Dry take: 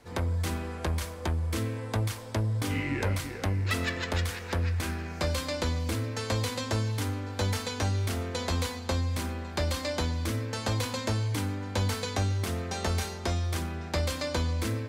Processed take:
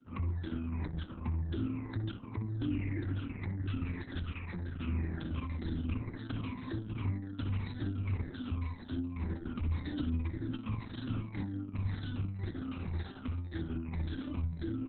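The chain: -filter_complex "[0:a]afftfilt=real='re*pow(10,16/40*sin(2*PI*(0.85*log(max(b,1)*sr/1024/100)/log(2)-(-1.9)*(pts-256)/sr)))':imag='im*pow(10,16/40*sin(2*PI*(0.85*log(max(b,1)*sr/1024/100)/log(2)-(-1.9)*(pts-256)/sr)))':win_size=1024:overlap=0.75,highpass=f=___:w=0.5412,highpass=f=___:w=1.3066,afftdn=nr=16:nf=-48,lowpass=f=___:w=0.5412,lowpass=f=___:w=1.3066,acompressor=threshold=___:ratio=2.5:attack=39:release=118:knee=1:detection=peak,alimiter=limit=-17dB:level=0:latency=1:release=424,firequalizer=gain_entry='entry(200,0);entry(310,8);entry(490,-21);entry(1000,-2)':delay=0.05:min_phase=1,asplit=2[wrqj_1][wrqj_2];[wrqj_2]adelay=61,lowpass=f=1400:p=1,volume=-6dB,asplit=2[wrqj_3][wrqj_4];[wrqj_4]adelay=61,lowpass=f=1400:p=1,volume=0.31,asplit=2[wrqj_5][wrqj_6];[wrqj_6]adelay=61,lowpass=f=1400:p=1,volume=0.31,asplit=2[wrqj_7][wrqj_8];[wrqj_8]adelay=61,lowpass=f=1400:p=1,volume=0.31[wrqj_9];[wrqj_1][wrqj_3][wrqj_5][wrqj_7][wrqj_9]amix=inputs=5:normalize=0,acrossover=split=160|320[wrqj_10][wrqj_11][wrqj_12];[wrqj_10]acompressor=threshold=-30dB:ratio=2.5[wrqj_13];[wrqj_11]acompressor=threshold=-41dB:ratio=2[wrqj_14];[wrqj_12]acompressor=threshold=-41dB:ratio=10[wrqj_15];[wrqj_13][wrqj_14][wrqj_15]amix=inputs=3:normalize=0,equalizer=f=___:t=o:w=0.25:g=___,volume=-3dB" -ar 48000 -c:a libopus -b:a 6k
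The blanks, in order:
51, 51, 11000, 11000, -26dB, 4900, -12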